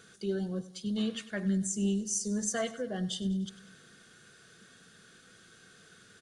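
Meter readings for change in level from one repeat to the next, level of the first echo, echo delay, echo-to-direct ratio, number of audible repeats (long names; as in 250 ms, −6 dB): −5.0 dB, −17.0 dB, 98 ms, −15.5 dB, 3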